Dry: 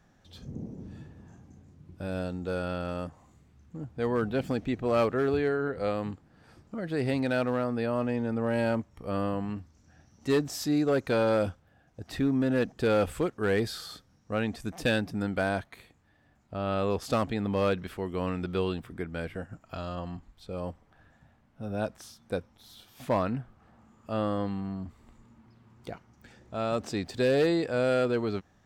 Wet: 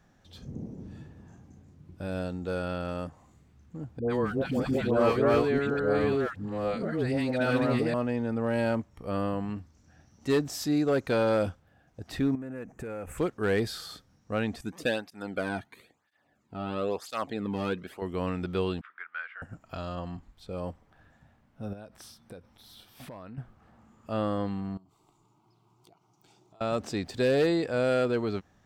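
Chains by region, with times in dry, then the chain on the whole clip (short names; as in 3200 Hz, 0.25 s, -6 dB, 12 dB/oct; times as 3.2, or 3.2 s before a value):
3.99–7.94 reverse delay 0.567 s, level -0.5 dB + dispersion highs, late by 0.108 s, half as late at 750 Hz
12.35–13.18 band shelf 4000 Hz -15.5 dB 1 oct + compressor 12:1, threshold -34 dBFS
14.61–18.02 notch 5500 Hz, Q 20 + tape flanging out of phase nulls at 1 Hz, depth 2 ms
18.81–19.42 ladder band-pass 1500 Hz, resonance 60% + bell 2200 Hz +12 dB 2.7 oct
21.73–23.38 bell 6800 Hz -8 dB 0.21 oct + compressor 16:1, threshold -40 dBFS + mismatched tape noise reduction encoder only
24.77–26.61 HPF 250 Hz 6 dB/oct + fixed phaser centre 350 Hz, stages 8 + compressor 10:1, threshold -55 dBFS
whole clip: dry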